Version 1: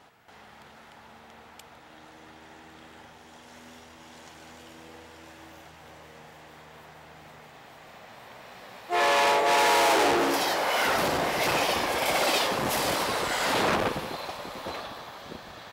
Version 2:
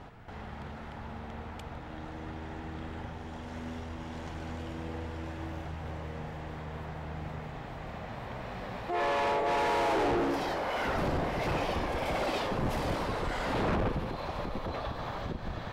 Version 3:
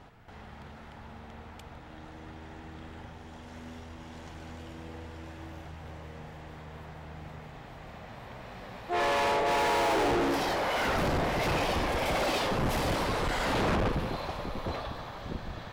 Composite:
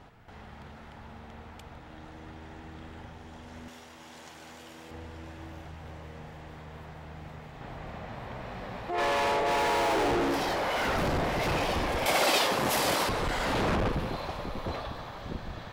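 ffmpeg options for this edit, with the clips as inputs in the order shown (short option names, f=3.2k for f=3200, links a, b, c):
-filter_complex "[0:a]asplit=2[a][b];[2:a]asplit=4[c][d][e][f];[c]atrim=end=3.682[g];[a]atrim=start=3.678:end=4.912[h];[d]atrim=start=4.908:end=7.612[i];[1:a]atrim=start=7.608:end=8.982[j];[e]atrim=start=8.978:end=12.062[k];[b]atrim=start=12.058:end=13.092[l];[f]atrim=start=13.088[m];[g][h]acrossfade=d=0.004:c1=hsin:c2=hsin[n];[n][i]acrossfade=d=0.004:c1=hsin:c2=hsin[o];[o][j]acrossfade=d=0.004:c1=hsin:c2=hsin[p];[p][k]acrossfade=d=0.004:c1=hsin:c2=hsin[q];[q][l]acrossfade=d=0.004:c1=hsin:c2=hsin[r];[r][m]acrossfade=d=0.004:c1=hsin:c2=hsin"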